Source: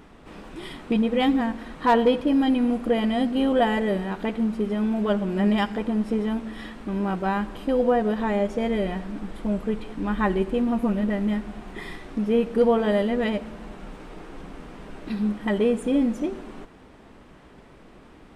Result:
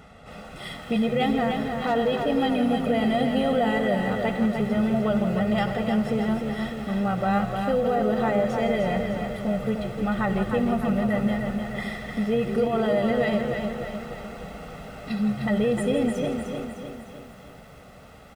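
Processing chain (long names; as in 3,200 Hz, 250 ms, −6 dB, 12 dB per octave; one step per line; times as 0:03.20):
high-pass filter 62 Hz
comb filter 1.5 ms, depth 90%
brickwall limiter −16.5 dBFS, peak gain reduction 9.5 dB
echo with shifted repeats 165 ms, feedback 31%, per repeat −76 Hz, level −12 dB
feedback echo at a low word length 304 ms, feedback 55%, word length 9 bits, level −5.5 dB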